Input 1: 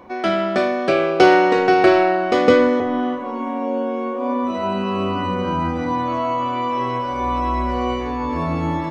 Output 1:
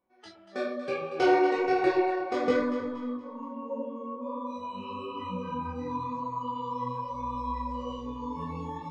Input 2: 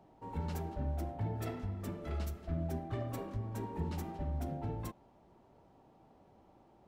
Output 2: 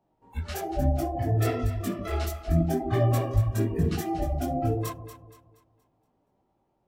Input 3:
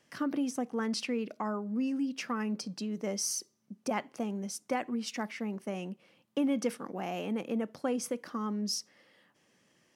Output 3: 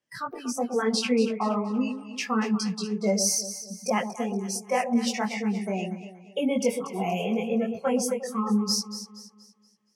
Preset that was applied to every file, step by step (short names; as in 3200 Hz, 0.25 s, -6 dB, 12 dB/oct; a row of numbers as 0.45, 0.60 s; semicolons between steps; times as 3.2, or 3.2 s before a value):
spectral noise reduction 24 dB; chorus voices 4, 1 Hz, delay 20 ms, depth 4.6 ms; echo with dull and thin repeats by turns 0.118 s, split 810 Hz, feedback 61%, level -7.5 dB; normalise peaks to -12 dBFS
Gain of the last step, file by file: -9.5, +17.0, +11.5 dB